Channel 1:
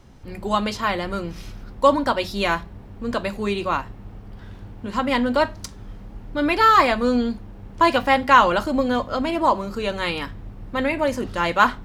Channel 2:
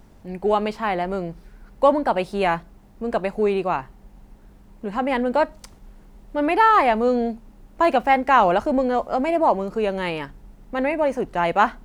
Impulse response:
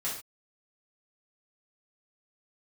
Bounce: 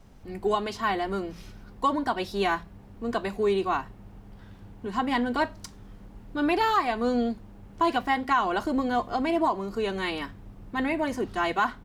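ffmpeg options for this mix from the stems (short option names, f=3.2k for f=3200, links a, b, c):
-filter_complex "[0:a]volume=-7.5dB[a];[1:a]adelay=5.8,volume=-6dB[b];[a][b]amix=inputs=2:normalize=0,alimiter=limit=-14dB:level=0:latency=1:release=294"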